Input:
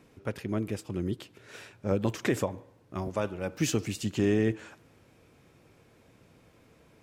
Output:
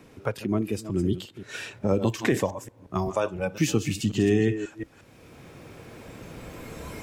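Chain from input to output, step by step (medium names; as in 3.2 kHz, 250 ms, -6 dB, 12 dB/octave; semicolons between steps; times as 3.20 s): chunks repeated in reverse 179 ms, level -10 dB; recorder AGC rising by 7.4 dB/s; spectral noise reduction 10 dB; three bands compressed up and down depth 40%; trim +5 dB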